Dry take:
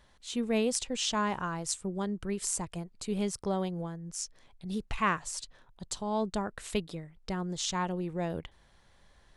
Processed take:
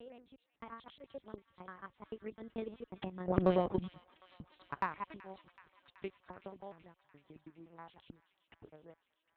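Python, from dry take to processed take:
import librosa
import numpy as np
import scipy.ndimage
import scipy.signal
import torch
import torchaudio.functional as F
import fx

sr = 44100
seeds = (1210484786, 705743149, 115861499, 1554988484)

p1 = fx.block_reorder(x, sr, ms=97.0, group=7)
p2 = fx.doppler_pass(p1, sr, speed_mps=30, closest_m=3.1, pass_at_s=3.46)
p3 = fx.lpc_vocoder(p2, sr, seeds[0], excitation='pitch_kept', order=8)
p4 = 10.0 ** (-39.0 / 20.0) * np.tanh(p3 / 10.0 ** (-39.0 / 20.0))
p5 = p3 + (p4 * 10.0 ** (-7.0 / 20.0))
p6 = scipy.signal.sosfilt(scipy.signal.butter(2, 42.0, 'highpass', fs=sr, output='sos'), p5)
p7 = fx.low_shelf(p6, sr, hz=110.0, db=-8.5)
p8 = fx.transient(p7, sr, attack_db=11, sustain_db=-1)
p9 = scipy.signal.sosfilt(scipy.signal.butter(2, 2800.0, 'lowpass', fs=sr, output='sos'), p8)
p10 = p9 + fx.echo_wet_highpass(p9, sr, ms=378, feedback_pct=73, hz=1900.0, wet_db=-14.0, dry=0)
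p11 = fx.cheby_harmonics(p10, sr, harmonics=(3, 5), levels_db=(-19, -20), full_scale_db=-16.5)
y = p11 * 10.0 ** (4.5 / 20.0)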